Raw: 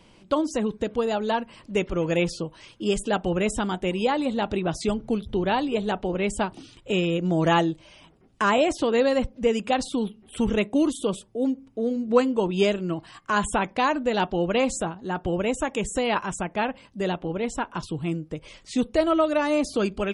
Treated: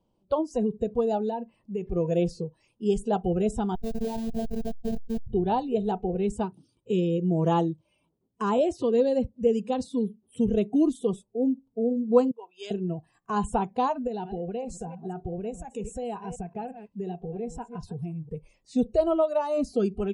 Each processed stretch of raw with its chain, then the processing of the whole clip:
0:01.29–0:01.87: parametric band 9,500 Hz −5 dB 1 octave + downward compressor 3 to 1, threshold −27 dBFS
0:03.75–0:05.27: comparator with hysteresis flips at −23 dBFS + phases set to zero 225 Hz + level that may fall only so fast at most 53 dB per second
0:06.32–0:10.50: high-pass filter 66 Hz + parametric band 740 Hz −9.5 dB 0.27 octaves
0:12.31–0:12.71: high-pass filter 1,200 Hz + multiband upward and downward expander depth 70%
0:14.07–0:18.34: delay that plays each chunk backwards 176 ms, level −13.5 dB + downward compressor 4 to 1, threshold −28 dBFS
whole clip: noise reduction from a noise print of the clip's start 17 dB; drawn EQ curve 870 Hz 0 dB, 2,000 Hz −22 dB, 3,200 Hz −11 dB

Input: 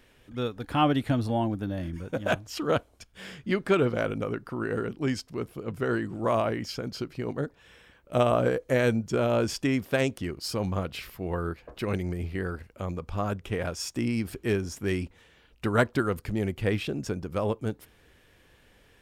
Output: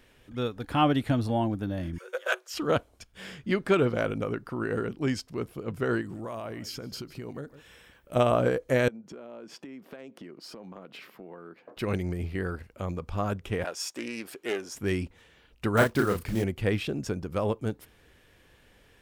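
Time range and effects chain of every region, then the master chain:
0:01.98–0:02.54: Chebyshev high-pass with heavy ripple 360 Hz, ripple 9 dB + high-shelf EQ 2,200 Hz +11 dB
0:06.01–0:08.16: high-shelf EQ 8,200 Hz +10 dB + single-tap delay 150 ms −23 dB + downward compressor 5 to 1, threshold −34 dBFS
0:08.88–0:11.77: high-pass filter 190 Hz 24 dB per octave + parametric band 11,000 Hz −14 dB 2.5 octaves + downward compressor 10 to 1, threshold −40 dBFS
0:13.64–0:14.75: high-pass filter 410 Hz + highs frequency-modulated by the lows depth 0.13 ms
0:15.77–0:16.44: one scale factor per block 5 bits + double-tracking delay 35 ms −4 dB
whole clip: no processing

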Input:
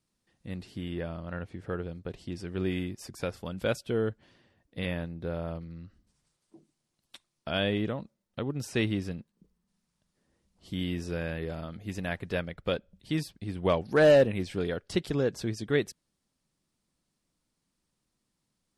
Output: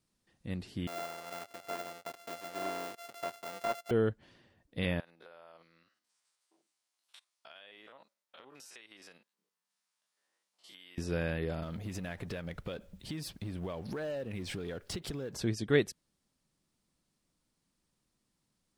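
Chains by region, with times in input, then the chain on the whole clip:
0:00.87–0:03.91: samples sorted by size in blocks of 64 samples + high-pass filter 520 Hz + de-essing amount 90%
0:05.00–0:10.98: spectrum averaged block by block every 50 ms + high-pass filter 890 Hz + downward compressor 12 to 1, threshold −49 dBFS
0:11.62–0:15.37: mu-law and A-law mismatch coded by mu + downward compressor 10 to 1, threshold −35 dBFS
whole clip: no processing

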